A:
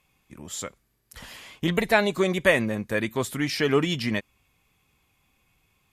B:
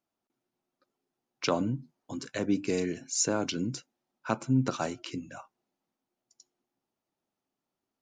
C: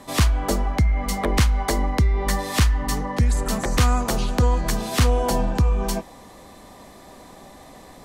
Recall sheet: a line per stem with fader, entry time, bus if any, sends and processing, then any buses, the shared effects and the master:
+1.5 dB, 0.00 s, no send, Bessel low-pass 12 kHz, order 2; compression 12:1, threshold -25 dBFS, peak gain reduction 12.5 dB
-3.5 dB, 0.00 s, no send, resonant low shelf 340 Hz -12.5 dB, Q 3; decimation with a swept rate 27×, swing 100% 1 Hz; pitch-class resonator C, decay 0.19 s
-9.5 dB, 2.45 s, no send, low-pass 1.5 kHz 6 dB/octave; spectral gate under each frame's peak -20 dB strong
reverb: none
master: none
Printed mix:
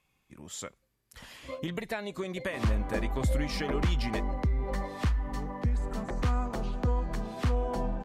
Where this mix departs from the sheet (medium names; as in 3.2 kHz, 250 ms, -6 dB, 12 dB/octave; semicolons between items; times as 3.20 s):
stem A +1.5 dB -> -5.5 dB; stem C: missing spectral gate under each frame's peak -20 dB strong